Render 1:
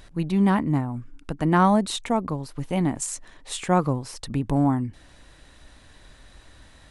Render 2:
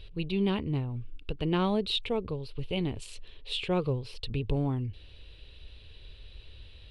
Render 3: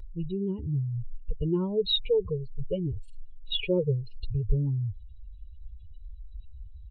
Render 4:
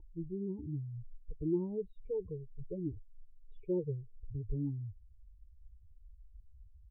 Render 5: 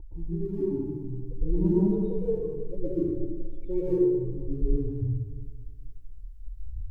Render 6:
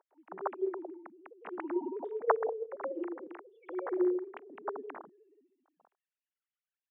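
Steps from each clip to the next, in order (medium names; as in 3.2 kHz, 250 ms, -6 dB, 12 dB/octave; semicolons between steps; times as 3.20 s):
FFT filter 100 Hz 0 dB, 150 Hz -10 dB, 290 Hz -15 dB, 430 Hz -1 dB, 690 Hz -17 dB, 1.9 kHz -16 dB, 2.7 kHz +3 dB, 4.3 kHz -3 dB, 6.5 kHz -25 dB, 12 kHz -20 dB; trim +3 dB
spectral contrast enhancement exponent 2.8; comb 2.1 ms, depth 88%; trim +1.5 dB
cascade formant filter u; trim +2 dB
phaser 0.6 Hz, delay 4.8 ms, feedback 73%; plate-style reverb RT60 1.6 s, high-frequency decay 0.5×, pre-delay 105 ms, DRR -9 dB
formants replaced by sine waves; resonant high-pass 790 Hz, resonance Q 1.5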